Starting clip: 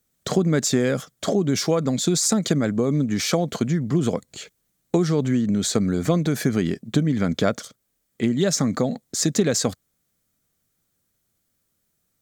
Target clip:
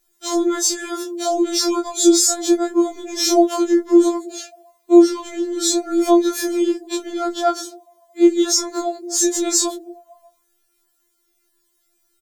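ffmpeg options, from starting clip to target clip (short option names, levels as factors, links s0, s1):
-filter_complex "[0:a]afftfilt=real='re':imag='-im':win_size=2048:overlap=0.75,acrossover=split=290|1300|3400[s0][s1][s2][s3];[s0]asplit=7[s4][s5][s6][s7][s8][s9][s10];[s5]adelay=120,afreqshift=110,volume=0.224[s11];[s6]adelay=240,afreqshift=220,volume=0.132[s12];[s7]adelay=360,afreqshift=330,volume=0.0776[s13];[s8]adelay=480,afreqshift=440,volume=0.0462[s14];[s9]adelay=600,afreqshift=550,volume=0.0272[s15];[s10]adelay=720,afreqshift=660,volume=0.016[s16];[s4][s11][s12][s13][s14][s15][s16]amix=inputs=7:normalize=0[s17];[s2]acompressor=threshold=0.00224:ratio=16[s18];[s17][s1][s18][s3]amix=inputs=4:normalize=0,alimiter=level_in=5.62:limit=0.891:release=50:level=0:latency=1,afftfilt=real='re*4*eq(mod(b,16),0)':imag='im*4*eq(mod(b,16),0)':win_size=2048:overlap=0.75,volume=0.631"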